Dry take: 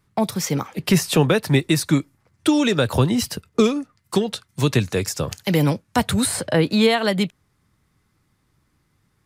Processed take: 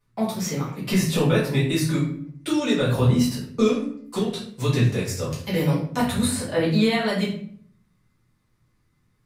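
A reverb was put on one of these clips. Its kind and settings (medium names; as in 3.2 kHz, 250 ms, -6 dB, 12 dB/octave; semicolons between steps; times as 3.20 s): simulated room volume 78 m³, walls mixed, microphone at 1.9 m; trim -12.5 dB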